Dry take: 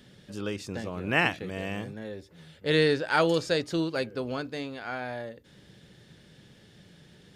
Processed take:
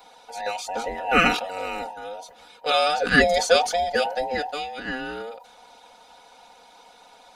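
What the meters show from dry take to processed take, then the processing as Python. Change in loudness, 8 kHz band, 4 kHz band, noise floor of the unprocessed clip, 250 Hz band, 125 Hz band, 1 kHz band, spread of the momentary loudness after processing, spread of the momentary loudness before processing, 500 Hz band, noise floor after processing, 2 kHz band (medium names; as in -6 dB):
+6.0 dB, +12.5 dB, +7.5 dB, -56 dBFS, 0.0 dB, -5.0 dB, +10.5 dB, 18 LU, 15 LU, +4.5 dB, -52 dBFS, +7.0 dB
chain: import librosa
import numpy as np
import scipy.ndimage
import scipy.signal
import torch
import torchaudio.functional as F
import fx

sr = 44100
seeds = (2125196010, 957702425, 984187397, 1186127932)

y = fx.band_invert(x, sr, width_hz=1000)
y = fx.hpss(y, sr, part='harmonic', gain_db=-7)
y = y + 0.88 * np.pad(y, (int(4.1 * sr / 1000.0), 0))[:len(y)]
y = fx.sustainer(y, sr, db_per_s=97.0)
y = y * 10.0 ** (6.0 / 20.0)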